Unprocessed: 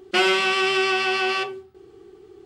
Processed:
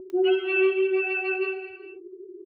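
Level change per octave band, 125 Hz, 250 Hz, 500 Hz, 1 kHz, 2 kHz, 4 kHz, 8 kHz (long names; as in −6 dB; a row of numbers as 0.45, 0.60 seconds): below −20 dB, can't be measured, +2.0 dB, −13.5 dB, −6.5 dB, −15.5 dB, below −35 dB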